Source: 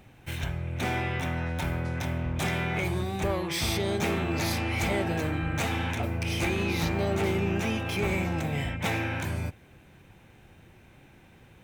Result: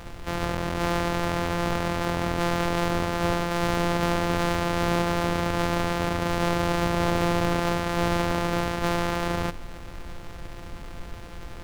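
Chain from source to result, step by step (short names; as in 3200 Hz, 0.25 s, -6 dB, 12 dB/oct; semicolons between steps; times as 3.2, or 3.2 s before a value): sample sorter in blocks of 256 samples; overdrive pedal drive 15 dB, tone 3900 Hz, clips at -18 dBFS; added noise brown -42 dBFS; gain +4.5 dB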